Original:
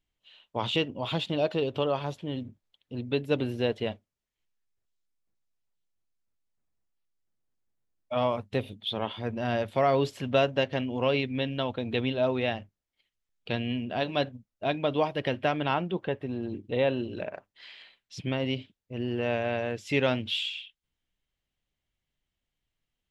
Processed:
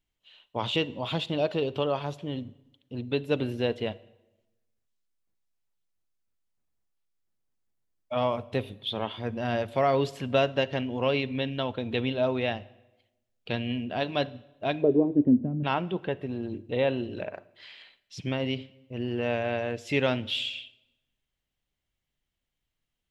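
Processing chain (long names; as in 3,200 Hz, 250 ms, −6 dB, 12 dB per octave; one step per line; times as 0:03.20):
0:14.81–0:15.63: low-pass with resonance 430 Hz → 190 Hz, resonance Q 7.7
on a send: convolution reverb RT60 1.0 s, pre-delay 36 ms, DRR 20 dB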